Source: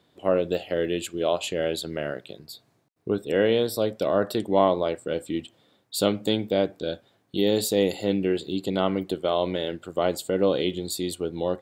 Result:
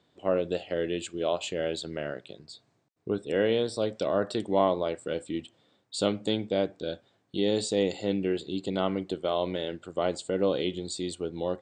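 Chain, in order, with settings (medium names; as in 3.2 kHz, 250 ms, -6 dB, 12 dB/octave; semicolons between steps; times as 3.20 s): steep low-pass 8.8 kHz 72 dB/octave; 3.83–5.24 s: tape noise reduction on one side only encoder only; trim -4 dB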